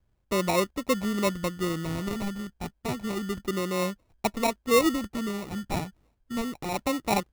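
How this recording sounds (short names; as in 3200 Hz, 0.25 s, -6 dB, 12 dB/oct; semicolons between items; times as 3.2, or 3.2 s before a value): phasing stages 2, 0.3 Hz, lowest notch 500–2900 Hz; aliases and images of a low sample rate 1600 Hz, jitter 0%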